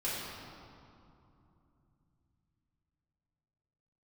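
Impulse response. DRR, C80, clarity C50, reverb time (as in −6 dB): −8.5 dB, 0.0 dB, −2.0 dB, 2.8 s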